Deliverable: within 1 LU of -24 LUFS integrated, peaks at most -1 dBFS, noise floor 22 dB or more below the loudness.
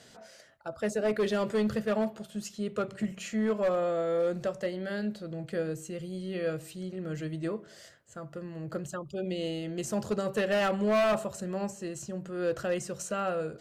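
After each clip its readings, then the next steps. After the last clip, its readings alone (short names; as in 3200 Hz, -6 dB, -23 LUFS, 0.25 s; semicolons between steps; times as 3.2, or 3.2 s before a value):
clipped 1.6%; flat tops at -22.5 dBFS; loudness -32.0 LUFS; peak -22.5 dBFS; loudness target -24.0 LUFS
-> clip repair -22.5 dBFS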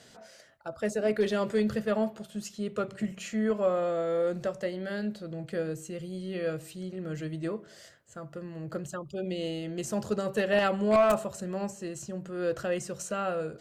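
clipped 0.0%; loudness -31.0 LUFS; peak -13.5 dBFS; loudness target -24.0 LUFS
-> gain +7 dB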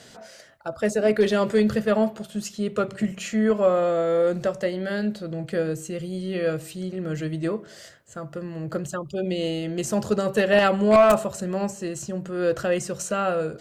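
loudness -24.0 LUFS; peak -6.5 dBFS; noise floor -48 dBFS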